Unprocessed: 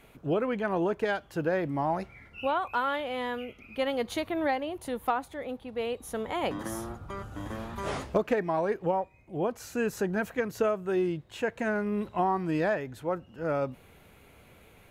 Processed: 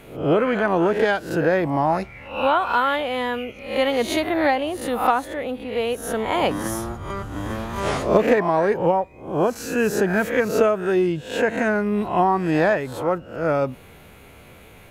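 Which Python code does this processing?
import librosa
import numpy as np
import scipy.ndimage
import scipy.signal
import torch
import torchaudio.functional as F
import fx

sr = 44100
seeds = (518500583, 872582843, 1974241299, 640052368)

y = fx.spec_swells(x, sr, rise_s=0.49)
y = y * librosa.db_to_amplitude(8.0)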